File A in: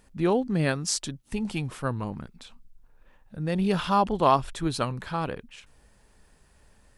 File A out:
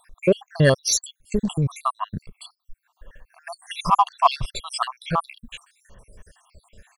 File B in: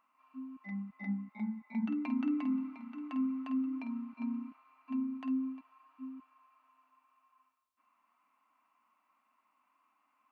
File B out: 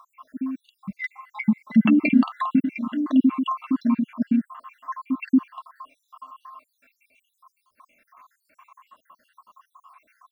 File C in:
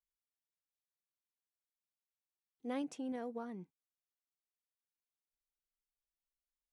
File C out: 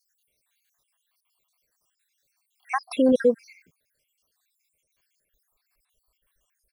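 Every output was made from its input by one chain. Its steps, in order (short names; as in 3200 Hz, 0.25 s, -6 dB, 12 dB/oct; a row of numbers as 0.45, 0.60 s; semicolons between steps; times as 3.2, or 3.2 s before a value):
random spectral dropouts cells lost 73%; comb 1.8 ms, depth 45%; in parallel at -10 dB: hard clip -27 dBFS; on the sum: match loudness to -23 LUFS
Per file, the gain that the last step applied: +8.5, +20.5, +23.0 dB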